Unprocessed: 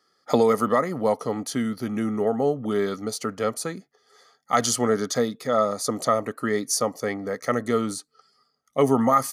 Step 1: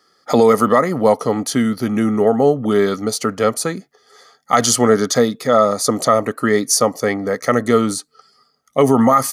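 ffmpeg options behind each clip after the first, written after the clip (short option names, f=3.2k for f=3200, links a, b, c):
-af "alimiter=level_in=10dB:limit=-1dB:release=50:level=0:latency=1,volume=-1dB"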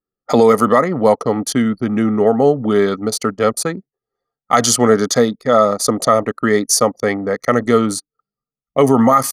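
-af "anlmdn=251,volume=1dB"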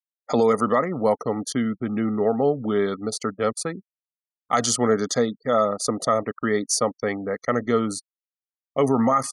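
-af "afftfilt=real='re*gte(hypot(re,im),0.0224)':imag='im*gte(hypot(re,im),0.0224)':win_size=1024:overlap=0.75,aresample=22050,aresample=44100,volume=-8dB"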